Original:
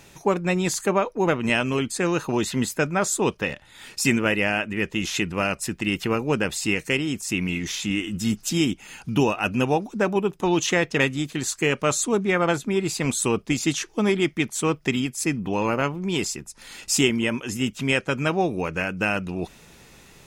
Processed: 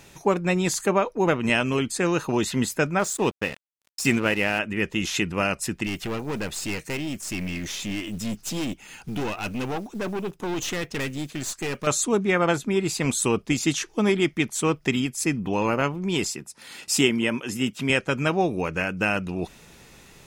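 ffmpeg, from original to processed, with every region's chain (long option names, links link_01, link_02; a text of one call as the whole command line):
ffmpeg -i in.wav -filter_complex "[0:a]asettb=1/sr,asplit=3[link_01][link_02][link_03];[link_01]atrim=end=2.994[link_04];[link_02]atrim=start=2.99:end=4.59,asetpts=PTS-STARTPTS,afade=type=in:duration=0.004:curve=qsin,afade=type=out:start_time=1.596:duration=0.004:curve=qsin,deesser=0.4,agate=range=-33dB:threshold=-40dB:ratio=3:release=100:detection=peak,aeval=exprs='sgn(val(0))*max(abs(val(0))-0.0133,0)':channel_layout=same[link_05];[link_03]atrim=start=4.586[link_06];[link_04][link_05]acrossfade=duration=0.004:curve1=hsin:curve2=qsin[link_07];[link_07][link_06]acrossfade=duration=0.004:curve1=qsin:curve2=hsin,asettb=1/sr,asplit=3[link_08][link_09][link_10];[link_08]atrim=end=5.864[link_11];[link_09]atrim=start=5.86:end=11.87,asetpts=PTS-STARTPTS,afade=type=in:duration=0.004:curve=qsin,afade=type=out:start_time=6.006:duration=0.004:curve=qsin,acrusher=bits=6:mode=log:mix=0:aa=0.000001,aeval=exprs='(tanh(17.8*val(0)+0.45)-tanh(0.45))/17.8':channel_layout=same[link_12];[link_10]atrim=start=11.866[link_13];[link_11][link_12]acrossfade=duration=0.004:curve1=hsin:curve2=qsin[link_14];[link_14][link_13]acrossfade=duration=0.004:curve1=qsin:curve2=hsin,asettb=1/sr,asplit=3[link_15][link_16][link_17];[link_15]atrim=end=16.294[link_18];[link_16]atrim=start=16.29:end=17.9,asetpts=PTS-STARTPTS,afade=type=in:duration=0.004:curve=qsin,afade=type=out:start_time=1.606:duration=0.004:curve=qsin,highpass=120,equalizer=frequency=6600:width_type=o:width=0.29:gain=-4[link_19];[link_17]atrim=start=17.896[link_20];[link_18][link_19]acrossfade=duration=0.004:curve1=hsin:curve2=qsin[link_21];[link_21][link_20]acrossfade=duration=0.004:curve1=qsin:curve2=hsin" out.wav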